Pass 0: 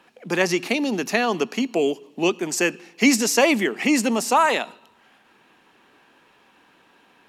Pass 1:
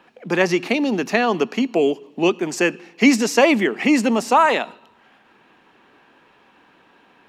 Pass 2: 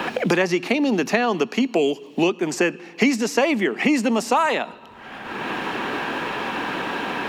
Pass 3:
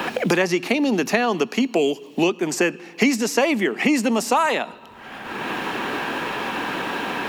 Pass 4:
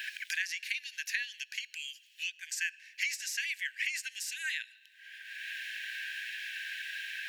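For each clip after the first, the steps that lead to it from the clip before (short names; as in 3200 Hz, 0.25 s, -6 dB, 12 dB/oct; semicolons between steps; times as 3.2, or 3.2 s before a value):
bell 12000 Hz -11.5 dB 1.9 oct; gain +3.5 dB
three-band squash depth 100%; gain -2 dB
high shelf 8900 Hz +9.5 dB
brick-wall FIR high-pass 1500 Hz; gain -9 dB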